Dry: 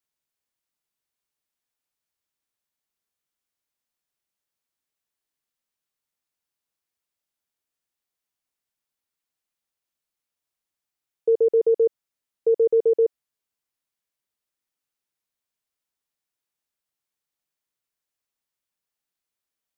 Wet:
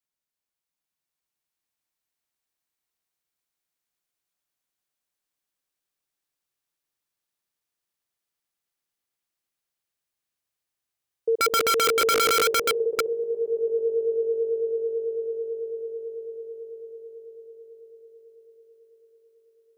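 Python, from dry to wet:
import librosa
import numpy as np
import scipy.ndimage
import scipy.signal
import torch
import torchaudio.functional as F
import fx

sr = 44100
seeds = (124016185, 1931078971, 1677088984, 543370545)

y = fx.echo_swell(x, sr, ms=110, loudest=8, wet_db=-8.0)
y = (np.mod(10.0 ** (13.5 / 20.0) * y + 1.0, 2.0) - 1.0) / 10.0 ** (13.5 / 20.0)
y = F.gain(torch.from_numpy(y), -4.0).numpy()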